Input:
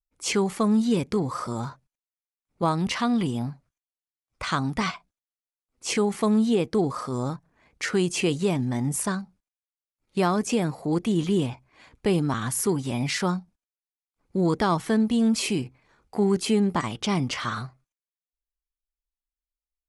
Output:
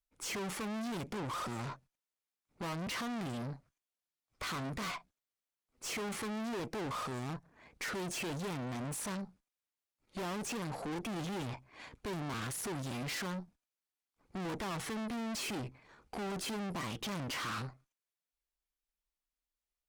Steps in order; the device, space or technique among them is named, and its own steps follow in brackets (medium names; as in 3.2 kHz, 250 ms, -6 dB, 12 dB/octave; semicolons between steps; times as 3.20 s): tube preamp driven hard (valve stage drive 42 dB, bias 0.65; bass shelf 110 Hz -5.5 dB; treble shelf 6.1 kHz -4 dB); trim +5.5 dB